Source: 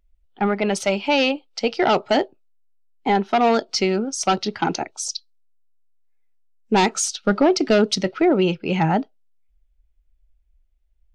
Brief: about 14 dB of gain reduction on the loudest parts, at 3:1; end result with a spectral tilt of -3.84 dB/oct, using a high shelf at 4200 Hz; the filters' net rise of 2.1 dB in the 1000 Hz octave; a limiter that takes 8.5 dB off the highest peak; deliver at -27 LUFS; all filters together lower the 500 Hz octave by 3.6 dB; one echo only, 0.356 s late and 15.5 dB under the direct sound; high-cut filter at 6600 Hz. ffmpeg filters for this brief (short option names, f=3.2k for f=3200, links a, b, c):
-af "lowpass=6.6k,equalizer=f=500:t=o:g=-7,equalizer=f=1k:t=o:g=6.5,highshelf=f=4.2k:g=-7,acompressor=threshold=-33dB:ratio=3,alimiter=level_in=1.5dB:limit=-24dB:level=0:latency=1,volume=-1.5dB,aecho=1:1:356:0.168,volume=9.5dB"